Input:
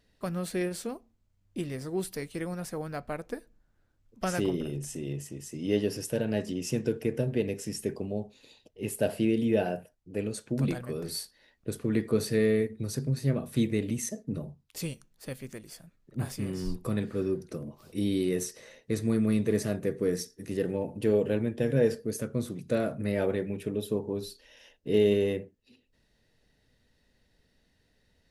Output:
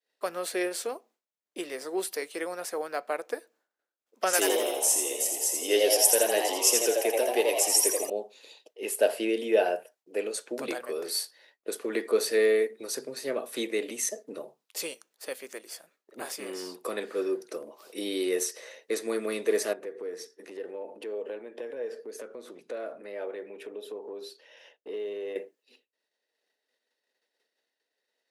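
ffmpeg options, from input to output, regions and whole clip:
-filter_complex "[0:a]asettb=1/sr,asplit=3[a][b][c];[a]atrim=end=4.334[d];[b]atrim=start=4.33:end=8.1,asetpts=PTS-STARTPTS,afade=t=in:d=0.004:c=qsin,afade=t=out:st=3.766:d=0.004:c=qsin,highpass=250,aemphasis=mode=production:type=75kf,asplit=8[e][f][g][h][i][j][k][l];[f]adelay=83,afreqshift=110,volume=-4dB[m];[g]adelay=166,afreqshift=220,volume=-9.8dB[n];[h]adelay=249,afreqshift=330,volume=-15.7dB[o];[i]adelay=332,afreqshift=440,volume=-21.5dB[p];[j]adelay=415,afreqshift=550,volume=-27.4dB[q];[k]adelay=498,afreqshift=660,volume=-33.2dB[r];[l]adelay=581,afreqshift=770,volume=-39.1dB[s];[e][m][n][o][p][q][r][s]amix=inputs=8:normalize=0,atrim=end_sample=166257[t];[c]atrim=start=8.096[u];[d][t]acrossfade=d=0.004:c1=hsin:c2=qsin[v];[v][u]acrossfade=d=0.004:c1=qsin:c2=hsin,asettb=1/sr,asplit=3[w][x][y];[w]atrim=end=19.734[z];[x]atrim=start=19.73:end=25.36,asetpts=PTS-STARTPTS,afade=t=in:d=0.004:c=qsin,afade=t=out:st=5.626:d=0.004:c=qsin,lowpass=f=2.2k:p=1,acompressor=threshold=-38dB:ratio=3:attack=3.2:release=140:knee=1:detection=peak[aa];[y]atrim=start=25.356[ab];[z][aa]acrossfade=d=0.004:c1=hsin:c2=qsin[ac];[ac][ab]acrossfade=d=0.004:c1=qsin:c2=hsin,agate=range=-33dB:threshold=-58dB:ratio=3:detection=peak,highpass=f=400:w=0.5412,highpass=f=400:w=1.3066,volume=5.5dB"

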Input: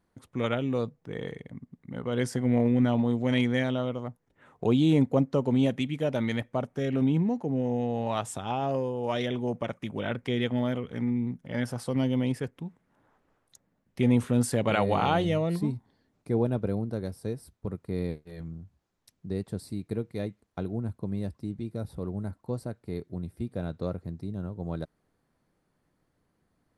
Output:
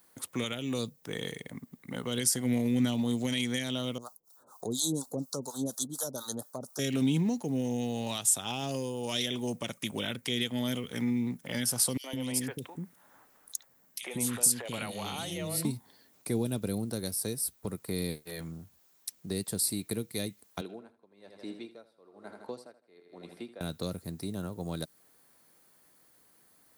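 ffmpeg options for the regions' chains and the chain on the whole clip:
-filter_complex "[0:a]asettb=1/sr,asplit=3[a][b][c];[a]atrim=end=3.984[d];[b]atrim=start=3.98:end=6.79,asetpts=PTS-STARTPTS,afade=t=in:d=0.004:c=qsin,afade=t=out:st=2.806:d=0.004:c=qsin,asuperstop=centerf=2400:order=8:qfactor=0.82,tiltshelf=f=790:g=-8,acrossover=split=610[e][f];[e]aeval=exprs='val(0)*(1-1/2+1/2*cos(2*PI*4.2*n/s))':c=same[g];[f]aeval=exprs='val(0)*(1-1/2-1/2*cos(2*PI*4.2*n/s))':c=same[h];[g][h]amix=inputs=2:normalize=0[i];[c]atrim=start=6.786[j];[d][i]acrossfade=d=0.004:c1=hsin:c2=qsin[k];[k][j]acrossfade=d=0.004:c1=qsin:c2=hsin,asettb=1/sr,asplit=3[l][m][n];[l]atrim=end=11.974[o];[m]atrim=start=11.97:end=15.65,asetpts=PTS-STARTPTS,afade=t=in:d=0.004:c=qsin,afade=t=out:st=3.676:d=0.004:c=qsin,acompressor=threshold=-30dB:ratio=4:attack=3.2:release=140:knee=1:detection=peak,acrossover=split=400|2900[p][q][r];[q]adelay=70[s];[p]adelay=160[t];[t][s][r]amix=inputs=3:normalize=0,atrim=end_sample=162288[u];[n]atrim=start=15.646[v];[o][u]acrossfade=d=0.004:c1=hsin:c2=qsin[w];[w][v]acrossfade=d=0.004:c1=qsin:c2=hsin,asettb=1/sr,asplit=3[x][y][z];[x]atrim=end=20.614[aa];[y]atrim=start=20.61:end=23.61,asetpts=PTS-STARTPTS,afade=t=in:d=0.004:c=qsin,afade=t=out:st=2.996:d=0.004:c=qsin,highpass=350,lowpass=3.4k,aecho=1:1:80|160|240|320|400|480:0.316|0.168|0.0888|0.0471|0.025|0.0132,atrim=end_sample=132300,aeval=exprs='val(0)*pow(10,-26*(0.5-0.5*cos(2*PI*1.1*n/s))/20)':c=same[ab];[z]atrim=start=23.606[ac];[aa][ab]acrossfade=d=0.004:c1=hsin:c2=qsin[ad];[ad][ac]acrossfade=d=0.004:c1=qsin:c2=hsin,aemphasis=mode=production:type=riaa,alimiter=limit=-20dB:level=0:latency=1:release=279,acrossover=split=290|3000[ae][af][ag];[af]acompressor=threshold=-47dB:ratio=6[ah];[ae][ah][ag]amix=inputs=3:normalize=0,volume=7.5dB"

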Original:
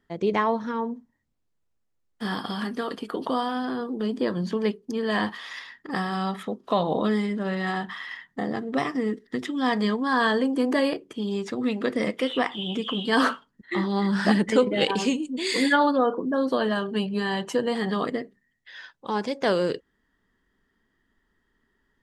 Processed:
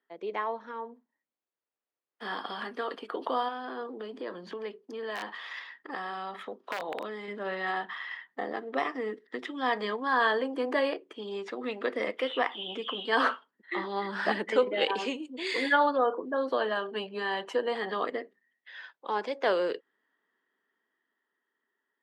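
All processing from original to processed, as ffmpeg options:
-filter_complex "[0:a]asettb=1/sr,asplit=3[a][b][c];[a]atrim=end=3.484[d];[b]atrim=start=3.48:end=7.28,asetpts=PTS-STARTPTS,afade=t=in:d=0.004:c=qsin,afade=t=out:st=3.796:d=0.004:c=qsin,highpass=56,aeval=exprs='(mod(4.73*val(0)+1,2)-1)/4.73':c=same,acompressor=threshold=-27dB:ratio=6:attack=3.2:release=140:knee=1:detection=peak[e];[c]atrim=start=7.276[f];[d][e]acrossfade=d=0.004:c1=hsin:c2=qsin[g];[g][f]acrossfade=d=0.004:c1=qsin:c2=hsin,highpass=260,acrossover=split=330 3900:gain=0.224 1 0.178[h][i][j];[h][i][j]amix=inputs=3:normalize=0,dynaudnorm=f=330:g=11:m=6.5dB,volume=-8dB"

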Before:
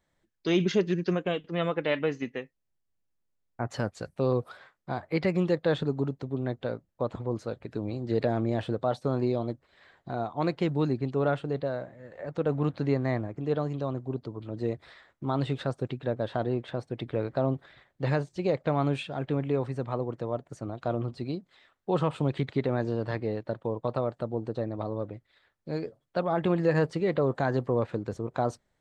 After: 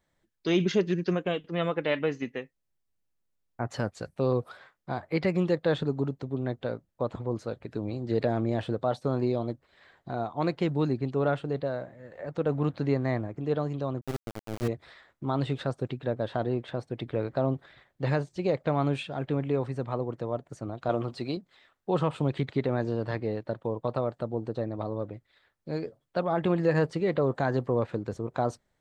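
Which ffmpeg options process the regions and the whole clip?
-filter_complex "[0:a]asettb=1/sr,asplit=3[a][b][c];[a]atrim=end=14.014[d];[b]atrim=start=14.01:end=14.68,asetpts=PTS-STARTPTS,afade=t=in:d=0.004:c=qsin,afade=t=out:st=0.666:d=0.004:c=qsin,asubboost=boost=7.5:cutoff=210,aeval=exprs='val(0)*gte(abs(val(0)),0.0299)':c=same[e];[c]atrim=start=14.676[f];[d][e]acrossfade=d=0.004:c1=hsin:c2=qsin[g];[g][f]acrossfade=d=0.004:c1=qsin:c2=hsin,asettb=1/sr,asplit=3[h][i][j];[h]atrim=end=20.894[k];[i]atrim=start=20.89:end=21.37,asetpts=PTS-STARTPTS,afade=t=in:d=0.004:c=qsin,afade=t=out:st=0.476:d=0.004:c=qsin,highpass=44,lowshelf=f=330:g=-10.5,acontrast=74[l];[j]atrim=start=21.366[m];[k][l]acrossfade=d=0.004:c1=hsin:c2=qsin[n];[n][m]acrossfade=d=0.004:c1=qsin:c2=hsin"

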